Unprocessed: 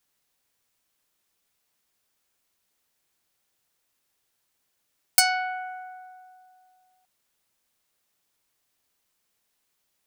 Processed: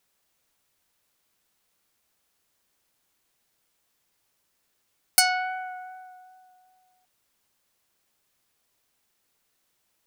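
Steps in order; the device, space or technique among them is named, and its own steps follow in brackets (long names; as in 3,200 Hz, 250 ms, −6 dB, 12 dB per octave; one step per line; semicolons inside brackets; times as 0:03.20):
plain cassette with noise reduction switched in (one half of a high-frequency compander decoder only; tape wow and flutter 11 cents; white noise bed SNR 37 dB)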